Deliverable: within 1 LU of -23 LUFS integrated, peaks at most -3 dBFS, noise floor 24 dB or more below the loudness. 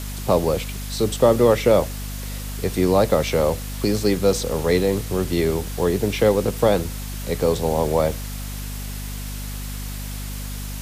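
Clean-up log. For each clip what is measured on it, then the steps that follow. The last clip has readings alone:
hum 50 Hz; highest harmonic 250 Hz; hum level -28 dBFS; noise floor -30 dBFS; noise floor target -46 dBFS; loudness -22.0 LUFS; peak level -4.0 dBFS; loudness target -23.0 LUFS
-> de-hum 50 Hz, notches 5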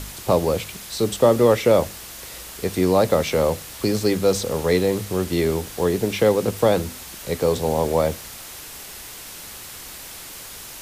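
hum not found; noise floor -38 dBFS; noise floor target -45 dBFS
-> noise reduction 7 dB, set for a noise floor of -38 dBFS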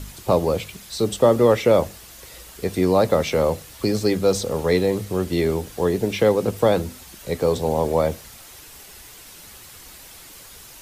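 noise floor -44 dBFS; noise floor target -45 dBFS
-> noise reduction 6 dB, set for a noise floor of -44 dBFS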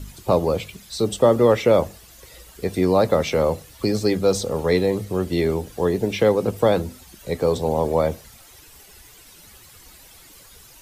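noise floor -48 dBFS; loudness -21.0 LUFS; peak level -4.0 dBFS; loudness target -23.0 LUFS
-> trim -2 dB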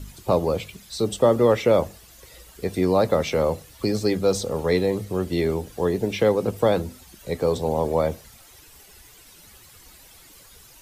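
loudness -23.0 LUFS; peak level -6.0 dBFS; noise floor -50 dBFS

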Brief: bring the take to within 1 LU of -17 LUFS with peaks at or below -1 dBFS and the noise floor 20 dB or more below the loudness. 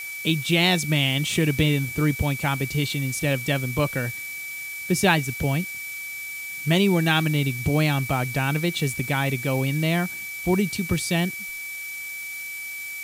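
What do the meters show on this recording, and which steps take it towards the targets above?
steady tone 2.3 kHz; tone level -32 dBFS; noise floor -34 dBFS; noise floor target -44 dBFS; loudness -24.0 LUFS; peak level -5.5 dBFS; loudness target -17.0 LUFS
-> band-stop 2.3 kHz, Q 30; noise reduction 10 dB, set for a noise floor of -34 dBFS; trim +7 dB; peak limiter -1 dBFS

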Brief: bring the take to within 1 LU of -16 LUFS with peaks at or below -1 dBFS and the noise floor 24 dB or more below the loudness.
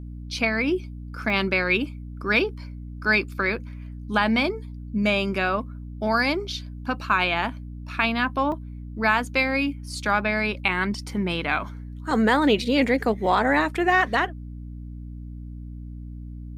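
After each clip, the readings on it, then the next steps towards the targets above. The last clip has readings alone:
dropouts 3; longest dropout 1.4 ms; hum 60 Hz; highest harmonic 300 Hz; hum level -34 dBFS; loudness -23.5 LUFS; peak level -7.0 dBFS; loudness target -16.0 LUFS
-> interpolate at 1.30/8.52/12.11 s, 1.4 ms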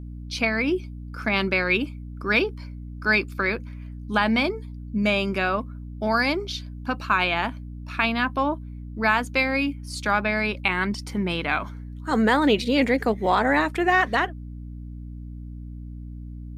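dropouts 0; hum 60 Hz; highest harmonic 300 Hz; hum level -34 dBFS
-> hum notches 60/120/180/240/300 Hz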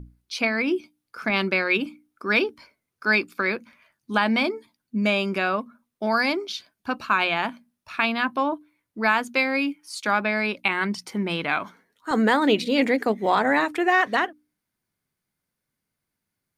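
hum not found; loudness -23.5 LUFS; peak level -7.5 dBFS; loudness target -16.0 LUFS
-> trim +7.5 dB; peak limiter -1 dBFS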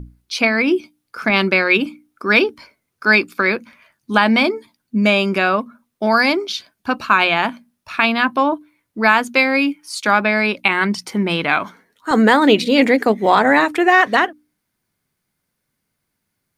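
loudness -16.0 LUFS; peak level -1.0 dBFS; noise floor -75 dBFS

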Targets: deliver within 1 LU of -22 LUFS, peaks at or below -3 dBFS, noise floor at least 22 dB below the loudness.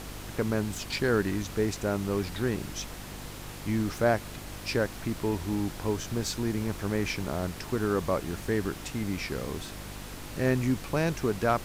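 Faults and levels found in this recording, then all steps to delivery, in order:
hum 50 Hz; highest harmonic 350 Hz; hum level -43 dBFS; noise floor -42 dBFS; noise floor target -53 dBFS; loudness -30.5 LUFS; peak level -13.0 dBFS; loudness target -22.0 LUFS
-> de-hum 50 Hz, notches 7; noise print and reduce 11 dB; trim +8.5 dB

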